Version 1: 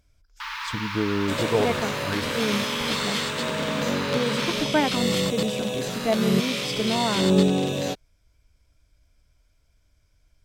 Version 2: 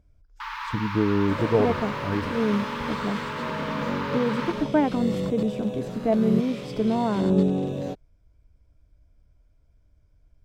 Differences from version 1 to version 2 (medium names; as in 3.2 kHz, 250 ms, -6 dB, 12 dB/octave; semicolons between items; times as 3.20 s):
speech -5.0 dB; second sound -10.0 dB; master: add tilt shelf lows +9 dB, about 1.3 kHz